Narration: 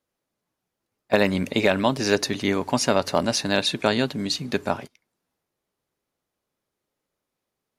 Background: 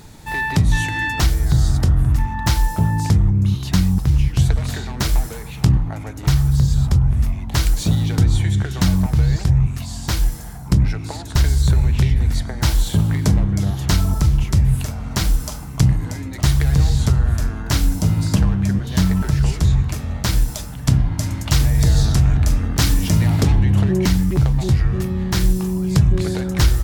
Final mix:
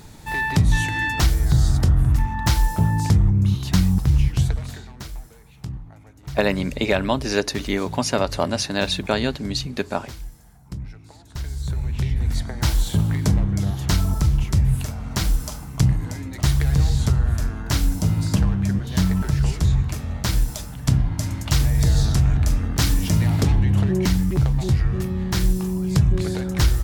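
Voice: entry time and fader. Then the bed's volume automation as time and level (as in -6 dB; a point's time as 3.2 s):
5.25 s, -0.5 dB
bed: 4.28 s -1.5 dB
5.15 s -17.5 dB
11.16 s -17.5 dB
12.39 s -3 dB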